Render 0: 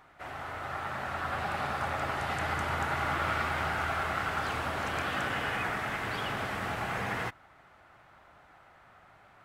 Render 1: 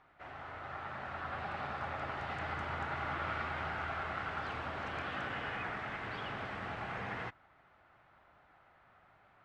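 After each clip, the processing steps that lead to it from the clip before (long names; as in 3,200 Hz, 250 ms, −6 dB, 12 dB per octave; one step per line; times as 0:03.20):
low-pass filter 3,900 Hz 12 dB per octave
level −7 dB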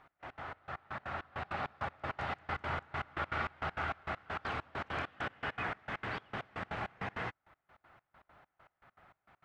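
gate pattern "x..x.xx..x..x.x" 199 BPM −24 dB
level +3 dB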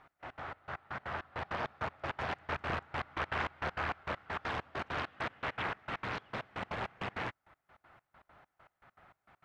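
highs frequency-modulated by the lows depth 0.92 ms
level +1 dB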